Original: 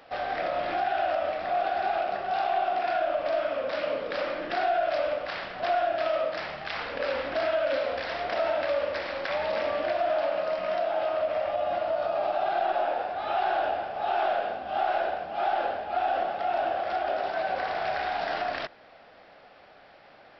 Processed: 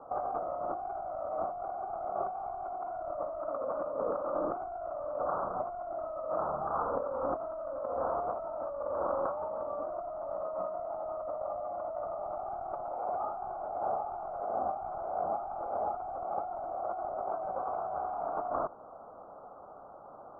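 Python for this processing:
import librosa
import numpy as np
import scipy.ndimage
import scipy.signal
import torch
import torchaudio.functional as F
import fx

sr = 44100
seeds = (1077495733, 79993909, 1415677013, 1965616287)

y = np.minimum(x, 2.0 * 10.0 ** (-23.0 / 20.0) - x)
y = scipy.signal.sosfilt(scipy.signal.butter(16, 1300.0, 'lowpass', fs=sr, output='sos'), y)
y = fx.tilt_shelf(y, sr, db=-4.0, hz=840.0)
y = fx.over_compress(y, sr, threshold_db=-36.0, ratio=-1.0)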